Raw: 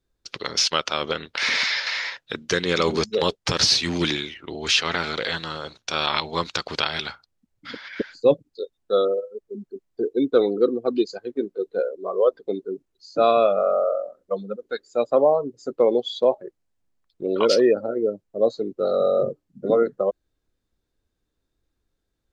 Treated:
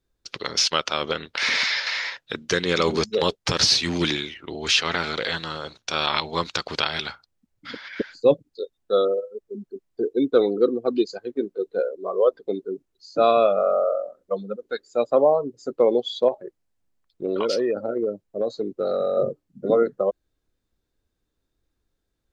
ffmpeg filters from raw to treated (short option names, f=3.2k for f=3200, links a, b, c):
-filter_complex "[0:a]asettb=1/sr,asplit=3[a][b][c];[a]atrim=end=16.284[d];[b]atrim=start=16.28:end=19.17,asetpts=PTS-STARTPTS,afade=t=in:d=0.004:c=qsin,afade=t=out:st=2.886:d=0.004:c=qsin,acompressor=threshold=-19dB:ratio=6:attack=3.2:release=140:knee=1:detection=peak[e];[c]atrim=start=19.166[f];[d][e]acrossfade=d=0.004:c1=hsin:c2=qsin[g];[g][f]acrossfade=d=0.004:c1=qsin:c2=hsin"